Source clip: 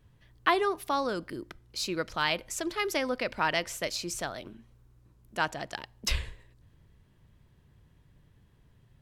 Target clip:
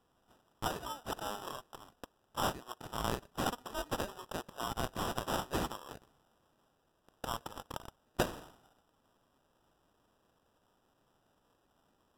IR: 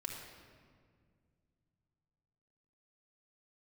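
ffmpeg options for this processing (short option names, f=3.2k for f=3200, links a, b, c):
-filter_complex "[0:a]highpass=650,aderivative,asplit=2[a][b];[b]acompressor=threshold=-51dB:ratio=6,volume=0dB[c];[a][c]amix=inputs=2:normalize=0,acrusher=samples=15:mix=1:aa=0.000001,asetrate=32667,aresample=44100,volume=2dB"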